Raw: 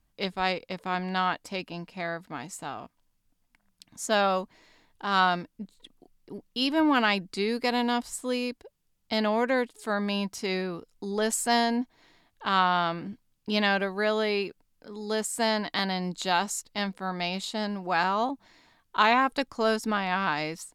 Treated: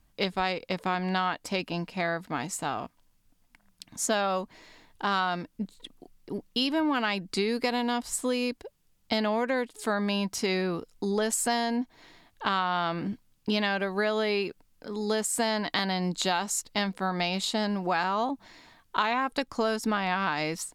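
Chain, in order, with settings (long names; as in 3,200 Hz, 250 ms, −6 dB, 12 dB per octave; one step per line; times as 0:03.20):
downward compressor, threshold −30 dBFS, peak gain reduction 12.5 dB
level +6 dB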